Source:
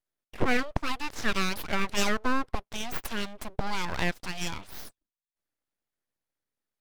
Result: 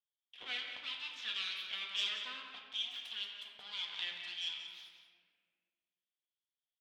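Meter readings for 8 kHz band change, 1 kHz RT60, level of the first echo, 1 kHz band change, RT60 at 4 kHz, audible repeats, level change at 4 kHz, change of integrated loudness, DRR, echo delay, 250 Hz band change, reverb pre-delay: -18.0 dB, 1.6 s, -9.5 dB, -21.0 dB, 1.0 s, 1, 0.0 dB, -8.5 dB, -0.5 dB, 0.181 s, -34.0 dB, 4 ms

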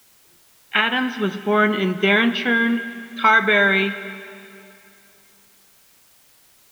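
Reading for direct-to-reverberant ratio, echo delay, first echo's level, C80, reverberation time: 12.0 dB, none, none, 13.0 dB, 2.7 s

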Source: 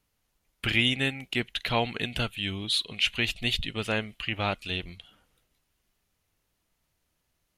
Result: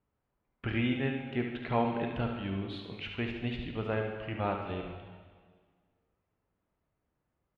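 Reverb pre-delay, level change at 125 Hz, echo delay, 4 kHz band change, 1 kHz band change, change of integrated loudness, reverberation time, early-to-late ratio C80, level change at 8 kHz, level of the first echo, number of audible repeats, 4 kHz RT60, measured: 7 ms, -1.5 dB, 72 ms, -17.5 dB, -1.5 dB, -6.0 dB, 1.7 s, 6.0 dB, under -30 dB, -7.5 dB, 1, 1.6 s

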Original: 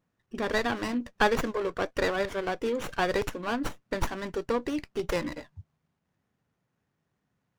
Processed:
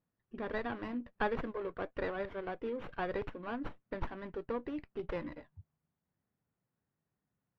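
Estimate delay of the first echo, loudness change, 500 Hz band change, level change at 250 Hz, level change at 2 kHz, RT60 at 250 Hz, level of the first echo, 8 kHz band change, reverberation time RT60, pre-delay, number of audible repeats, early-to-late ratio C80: none, -9.5 dB, -9.0 dB, -8.5 dB, -11.5 dB, none, none, under -30 dB, none, none, none, none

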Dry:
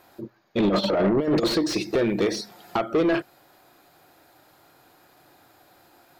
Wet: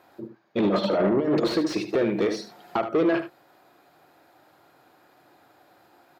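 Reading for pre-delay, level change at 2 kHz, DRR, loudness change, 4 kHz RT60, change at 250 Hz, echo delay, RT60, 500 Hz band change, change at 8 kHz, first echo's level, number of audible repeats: none, -1.5 dB, none, -1.0 dB, none, -1.0 dB, 75 ms, none, -0.5 dB, -7.0 dB, -11.0 dB, 1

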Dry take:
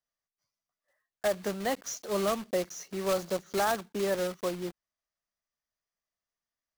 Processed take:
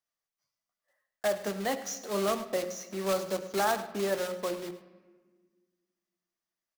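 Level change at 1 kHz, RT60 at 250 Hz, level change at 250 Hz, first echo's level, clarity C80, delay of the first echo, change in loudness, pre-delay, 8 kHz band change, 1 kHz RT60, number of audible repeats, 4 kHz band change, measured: +0.5 dB, 2.1 s, -1.0 dB, -15.5 dB, 12.5 dB, 0.105 s, 0.0 dB, 3 ms, 0.0 dB, 1.3 s, 1, +0.5 dB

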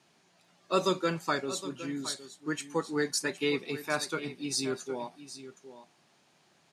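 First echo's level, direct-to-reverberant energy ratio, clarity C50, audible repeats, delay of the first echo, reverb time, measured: -14.0 dB, none, none, 1, 0.764 s, none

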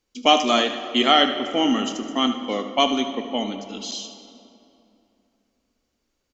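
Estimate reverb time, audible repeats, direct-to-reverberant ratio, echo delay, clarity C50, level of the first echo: 2.8 s, 1, 6.5 dB, 76 ms, 7.0 dB, -12.0 dB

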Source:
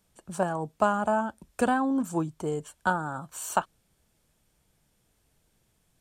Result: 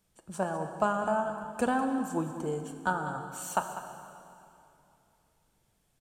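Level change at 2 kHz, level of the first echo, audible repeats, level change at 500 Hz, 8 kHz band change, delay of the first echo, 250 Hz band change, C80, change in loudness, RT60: -3.0 dB, -12.5 dB, 1, -2.5 dB, -3.0 dB, 0.198 s, -3.5 dB, 7.0 dB, -3.0 dB, 2.8 s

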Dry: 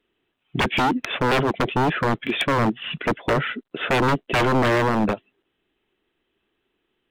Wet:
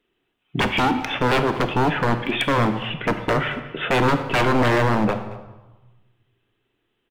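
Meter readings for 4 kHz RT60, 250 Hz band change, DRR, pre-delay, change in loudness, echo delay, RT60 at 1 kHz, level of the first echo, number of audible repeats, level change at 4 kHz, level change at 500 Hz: 0.80 s, +1.0 dB, 6.5 dB, 4 ms, +1.0 dB, 0.224 s, 1.2 s, -19.5 dB, 1, +0.5 dB, +1.0 dB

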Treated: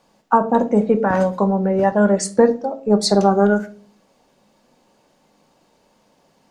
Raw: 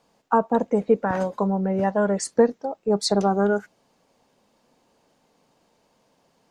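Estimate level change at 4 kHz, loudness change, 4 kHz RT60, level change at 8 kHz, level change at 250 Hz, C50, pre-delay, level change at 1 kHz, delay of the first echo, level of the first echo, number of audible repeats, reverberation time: +4.5 dB, +5.5 dB, 0.30 s, +5.0 dB, +6.5 dB, 16.5 dB, 3 ms, +5.5 dB, none, none, none, 0.45 s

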